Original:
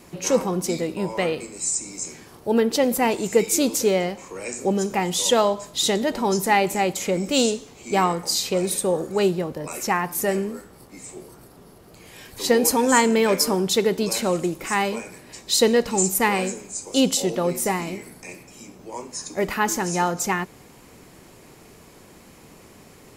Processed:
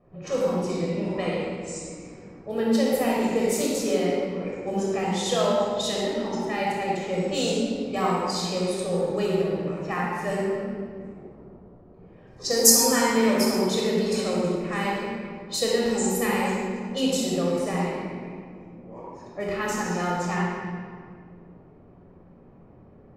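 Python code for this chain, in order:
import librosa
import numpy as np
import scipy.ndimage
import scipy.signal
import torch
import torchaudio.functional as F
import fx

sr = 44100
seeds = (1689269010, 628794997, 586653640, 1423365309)

y = fx.level_steps(x, sr, step_db=10, at=(6.05, 6.88))
y = fx.env_lowpass(y, sr, base_hz=810.0, full_db=-17.5)
y = fx.high_shelf_res(y, sr, hz=4100.0, db=11.5, q=3.0, at=(12.27, 12.72))
y = fx.room_shoebox(y, sr, seeds[0], volume_m3=3800.0, walls='mixed', distance_m=6.1)
y = y * librosa.db_to_amplitude(-12.0)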